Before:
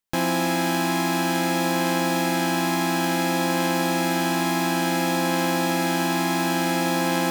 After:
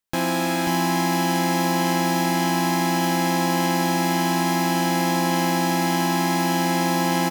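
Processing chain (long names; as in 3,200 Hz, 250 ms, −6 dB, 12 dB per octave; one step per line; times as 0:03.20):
single-tap delay 538 ms −5 dB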